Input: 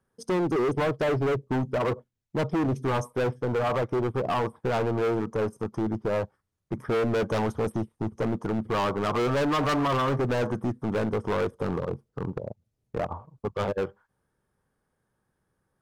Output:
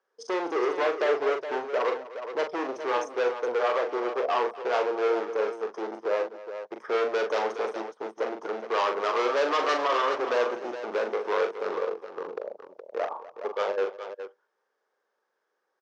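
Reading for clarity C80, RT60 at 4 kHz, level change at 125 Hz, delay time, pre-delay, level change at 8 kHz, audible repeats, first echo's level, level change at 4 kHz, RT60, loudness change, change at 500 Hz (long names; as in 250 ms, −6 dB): no reverb audible, no reverb audible, below −30 dB, 41 ms, no reverb audible, can't be measured, 3, −6.0 dB, +1.5 dB, no reverb audible, −0.5 dB, +1.0 dB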